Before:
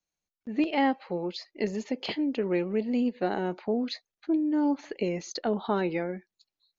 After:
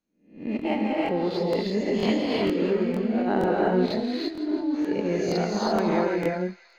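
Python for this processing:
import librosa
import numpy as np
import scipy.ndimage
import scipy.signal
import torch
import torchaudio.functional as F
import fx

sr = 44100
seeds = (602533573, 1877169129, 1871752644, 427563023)

p1 = fx.spec_swells(x, sr, rise_s=0.47)
p2 = fx.high_shelf(p1, sr, hz=3100.0, db=-12.0)
p3 = fx.over_compress(p2, sr, threshold_db=-29.0, ratio=-0.5)
p4 = p3 + fx.echo_wet_highpass(p3, sr, ms=167, feedback_pct=69, hz=2100.0, wet_db=-12.5, dry=0)
p5 = fx.rev_gated(p4, sr, seeds[0], gate_ms=370, shape='rising', drr_db=-2.5)
p6 = fx.backlash(p5, sr, play_db=-34.0)
p7 = p5 + (p6 * librosa.db_to_amplitude(-10.0))
y = fx.buffer_crackle(p7, sr, first_s=0.57, period_s=0.47, block=1024, kind='repeat')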